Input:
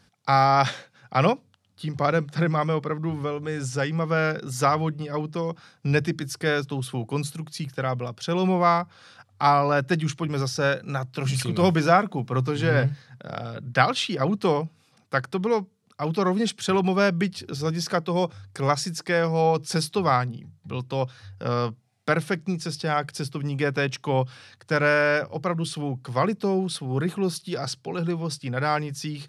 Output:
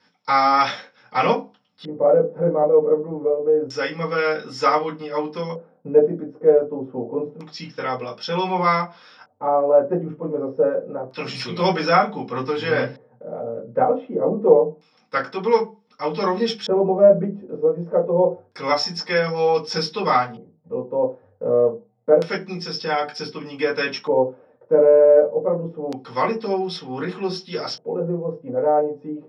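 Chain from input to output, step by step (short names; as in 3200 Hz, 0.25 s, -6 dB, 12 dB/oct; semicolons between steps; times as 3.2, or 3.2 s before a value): 7.25–8.05 steep low-pass 7800 Hz 36 dB/oct; reverb RT60 0.25 s, pre-delay 3 ms, DRR -7 dB; LFO low-pass square 0.27 Hz 550–4700 Hz; tilt +2.5 dB/oct; gain -17 dB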